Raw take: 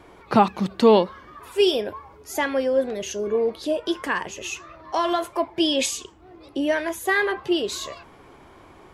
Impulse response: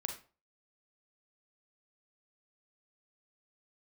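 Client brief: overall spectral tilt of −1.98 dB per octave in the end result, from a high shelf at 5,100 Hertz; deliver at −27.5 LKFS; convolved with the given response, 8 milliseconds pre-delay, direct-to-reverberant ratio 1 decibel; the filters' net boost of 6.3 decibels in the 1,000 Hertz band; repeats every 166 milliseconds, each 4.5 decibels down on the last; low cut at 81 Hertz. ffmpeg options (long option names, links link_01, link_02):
-filter_complex "[0:a]highpass=81,equalizer=frequency=1000:width_type=o:gain=8,highshelf=frequency=5100:gain=-5,aecho=1:1:166|332|498|664|830|996|1162|1328|1494:0.596|0.357|0.214|0.129|0.0772|0.0463|0.0278|0.0167|0.01,asplit=2[link_01][link_02];[1:a]atrim=start_sample=2205,adelay=8[link_03];[link_02][link_03]afir=irnorm=-1:irlink=0,volume=-1dB[link_04];[link_01][link_04]amix=inputs=2:normalize=0,volume=-10.5dB"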